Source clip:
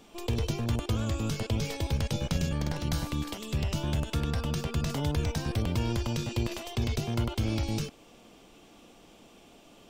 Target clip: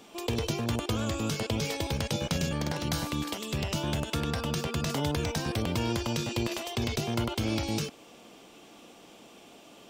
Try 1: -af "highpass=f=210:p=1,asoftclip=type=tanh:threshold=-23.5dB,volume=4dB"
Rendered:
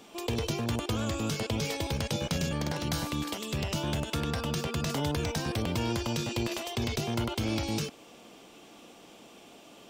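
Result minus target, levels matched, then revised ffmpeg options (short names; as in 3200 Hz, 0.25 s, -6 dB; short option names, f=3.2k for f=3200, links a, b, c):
soft clip: distortion +16 dB
-af "highpass=f=210:p=1,asoftclip=type=tanh:threshold=-14.5dB,volume=4dB"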